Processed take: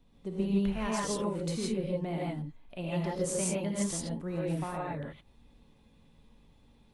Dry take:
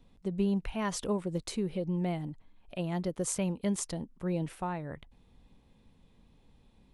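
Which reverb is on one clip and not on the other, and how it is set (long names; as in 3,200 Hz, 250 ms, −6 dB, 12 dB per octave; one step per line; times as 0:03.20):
reverb whose tail is shaped and stops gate 190 ms rising, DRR −5 dB
level −4 dB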